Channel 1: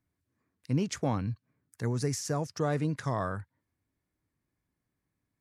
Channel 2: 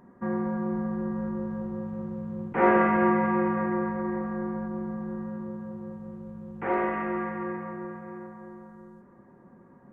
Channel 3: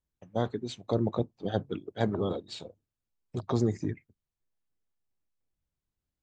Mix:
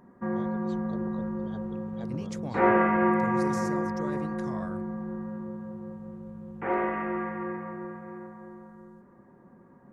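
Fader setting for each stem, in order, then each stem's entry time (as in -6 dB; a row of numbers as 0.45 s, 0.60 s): -9.0 dB, -1.0 dB, -16.0 dB; 1.40 s, 0.00 s, 0.00 s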